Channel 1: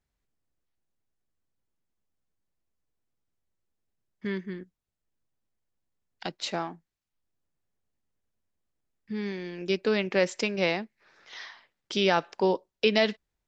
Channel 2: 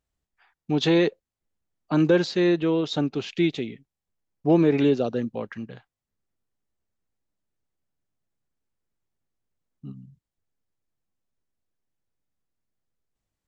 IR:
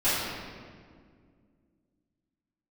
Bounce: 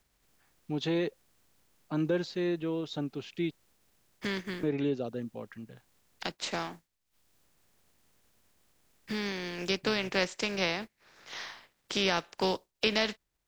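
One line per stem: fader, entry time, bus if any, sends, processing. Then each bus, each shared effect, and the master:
-4.0 dB, 0.00 s, no send, spectral contrast lowered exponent 0.61; three-band squash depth 40%
-10.5 dB, 0.00 s, muted 3.51–4.63, no send, dry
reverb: off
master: low shelf 91 Hz +5.5 dB

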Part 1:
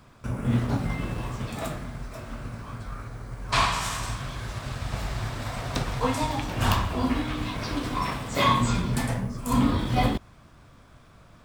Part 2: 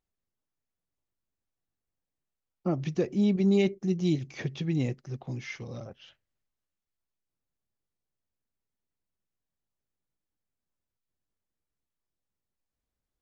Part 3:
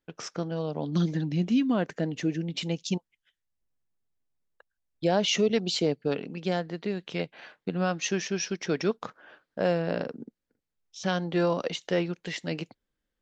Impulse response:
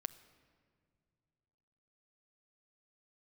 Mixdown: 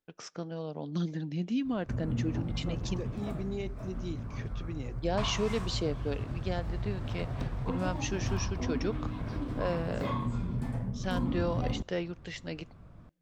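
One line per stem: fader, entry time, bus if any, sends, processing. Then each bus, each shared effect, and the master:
-6.5 dB, 1.65 s, bus A, no send, low shelf 370 Hz +9 dB
-3.0 dB, 0.00 s, bus A, no send, HPF 460 Hz 6 dB/oct; high shelf 4100 Hz +9.5 dB
-8.0 dB, 0.00 s, no bus, send -13.5 dB, dry
bus A: 0.0 dB, high shelf 2300 Hz -12 dB; compressor 2.5:1, threshold -33 dBFS, peak gain reduction 11 dB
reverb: on, pre-delay 6 ms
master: dry

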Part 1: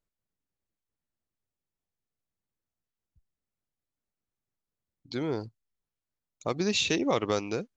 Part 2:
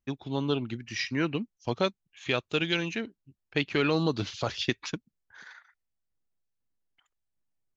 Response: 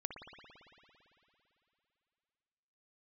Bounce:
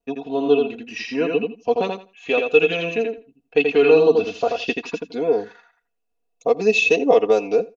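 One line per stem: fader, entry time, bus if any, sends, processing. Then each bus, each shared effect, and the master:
-4.5 dB, 0.00 s, no send, echo send -21.5 dB, vibrato 2.9 Hz 75 cents
-5.5 dB, 0.00 s, no send, echo send -4.5 dB, dry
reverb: off
echo: feedback echo 83 ms, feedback 17%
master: bell 300 Hz +2.5 dB 0.26 oct; comb 4.2 ms, depth 88%; small resonant body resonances 460/680/2600 Hz, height 17 dB, ringing for 25 ms

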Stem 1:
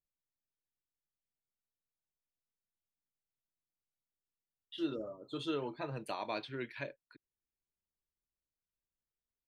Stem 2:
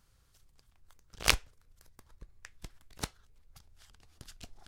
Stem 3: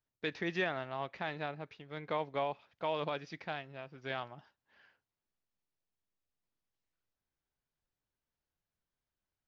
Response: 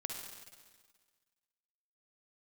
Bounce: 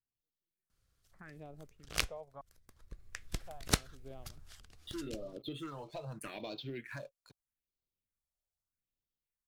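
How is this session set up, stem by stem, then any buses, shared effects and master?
+2.5 dB, 0.15 s, bus A, no send, sample leveller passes 2
2.79 s -10.5 dB -> 3.38 s -2.5 dB -> 4.28 s -2.5 dB -> 4.67 s -9.5 dB, 0.70 s, no bus, no send, AGC gain up to 11 dB
-7.0 dB, 0.00 s, bus A, no send, step gate "x.....xxxxxx" 81 bpm -60 dB; LPF 1300 Hz 12 dB/oct
bus A: 0.0 dB, phaser stages 4, 0.8 Hz, lowest notch 260–1800 Hz; compressor 6:1, threshold -40 dBFS, peak gain reduction 11 dB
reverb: off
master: bell 900 Hz -7 dB 0.33 oct

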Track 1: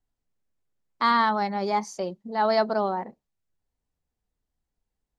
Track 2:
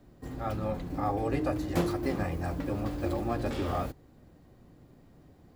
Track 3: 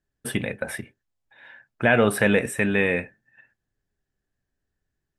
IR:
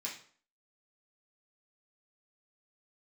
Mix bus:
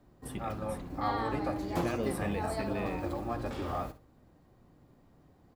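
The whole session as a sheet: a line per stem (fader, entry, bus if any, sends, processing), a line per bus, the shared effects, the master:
-16.5 dB, 0.00 s, no send, echo send -5 dB, dry
-5.5 dB, 0.00 s, no send, echo send -13.5 dB, bell 1000 Hz +5 dB 1 oct
-13.5 dB, 0.00 s, no send, no echo send, bell 1300 Hz -13 dB 1.6 oct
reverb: off
echo: feedback echo 61 ms, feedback 24%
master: dry

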